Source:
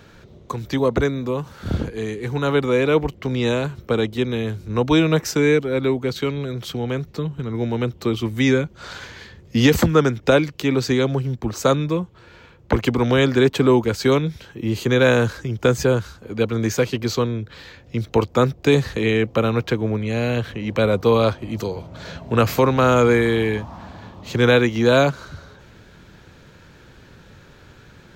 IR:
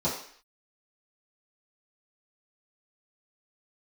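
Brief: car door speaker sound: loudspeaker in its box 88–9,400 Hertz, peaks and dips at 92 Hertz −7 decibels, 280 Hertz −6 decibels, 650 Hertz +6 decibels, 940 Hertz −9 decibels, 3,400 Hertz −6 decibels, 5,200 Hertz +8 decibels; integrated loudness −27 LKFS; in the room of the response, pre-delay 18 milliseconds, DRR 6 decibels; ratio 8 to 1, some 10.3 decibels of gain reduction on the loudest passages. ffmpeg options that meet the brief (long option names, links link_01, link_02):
-filter_complex "[0:a]acompressor=threshold=-21dB:ratio=8,asplit=2[link_01][link_02];[1:a]atrim=start_sample=2205,adelay=18[link_03];[link_02][link_03]afir=irnorm=-1:irlink=0,volume=-16dB[link_04];[link_01][link_04]amix=inputs=2:normalize=0,highpass=88,equalizer=frequency=92:width_type=q:width=4:gain=-7,equalizer=frequency=280:width_type=q:width=4:gain=-6,equalizer=frequency=650:width_type=q:width=4:gain=6,equalizer=frequency=940:width_type=q:width=4:gain=-9,equalizer=frequency=3400:width_type=q:width=4:gain=-6,equalizer=frequency=5200:width_type=q:width=4:gain=8,lowpass=frequency=9400:width=0.5412,lowpass=frequency=9400:width=1.3066,volume=-1dB"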